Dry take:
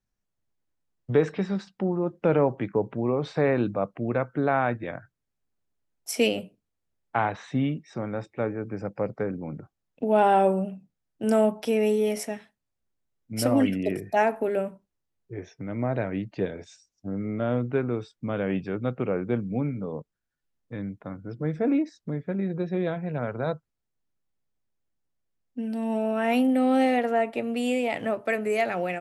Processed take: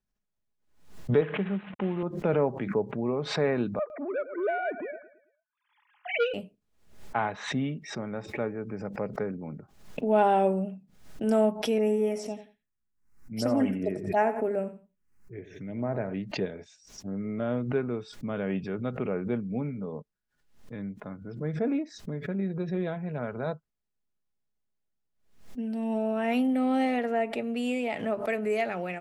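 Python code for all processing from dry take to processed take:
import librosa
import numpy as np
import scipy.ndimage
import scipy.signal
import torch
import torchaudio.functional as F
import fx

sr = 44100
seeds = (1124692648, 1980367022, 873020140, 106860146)

y = fx.chain(x, sr, fx.cvsd(bps=16000),
    fx.highpass(hz=100.0, slope=12), at=(1.21, 2.03))
y = fx.chain(y, sr, fx.sine_speech(),
    fx.echo_feedback(ms=110, feedback_pct=41, wet_db=-15.0),
    fx.transformer_sat(knee_hz=970.0), at=(3.79, 6.34))
y = fx.chain(y, sr, fx.env_phaser(low_hz=570.0, high_hz=4200.0, full_db=-21.5),
    fx.echo_feedback(ms=88, feedback_pct=20, wet_db=-13.0), at=(11.78, 16.14))
y = fx.high_shelf(y, sr, hz=8600.0, db=-7.0)
y = y + 0.3 * np.pad(y, (int(4.8 * sr / 1000.0), 0))[:len(y)]
y = fx.pre_swell(y, sr, db_per_s=100.0)
y = y * librosa.db_to_amplitude(-4.0)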